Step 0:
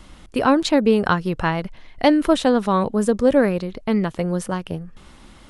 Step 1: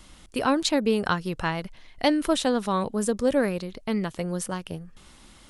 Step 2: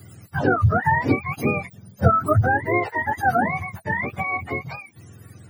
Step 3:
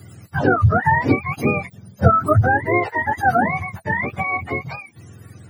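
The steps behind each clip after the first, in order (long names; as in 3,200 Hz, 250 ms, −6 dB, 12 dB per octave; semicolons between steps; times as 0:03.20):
high-shelf EQ 3,300 Hz +10 dB; level −7 dB
frequency axis turned over on the octave scale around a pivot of 630 Hz; level +5.5 dB
high-shelf EQ 12,000 Hz −8.5 dB; level +3 dB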